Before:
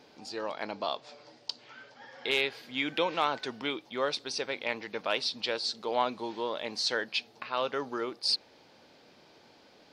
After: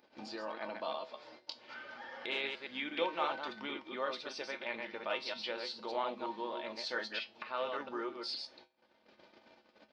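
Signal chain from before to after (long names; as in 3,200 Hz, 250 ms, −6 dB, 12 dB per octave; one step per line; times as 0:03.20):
delay that plays each chunk backwards 116 ms, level −4 dB
head-to-tape spacing loss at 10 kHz 35 dB
comb filter 3.4 ms, depth 30%
pitch-shifted copies added −4 semitones −16 dB
spectral tilt +3 dB per octave
noise gate −57 dBFS, range −56 dB
tuned comb filter 72 Hz, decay 0.21 s, harmonics odd, mix 70%
upward compression, threshold −41 dBFS
level +3 dB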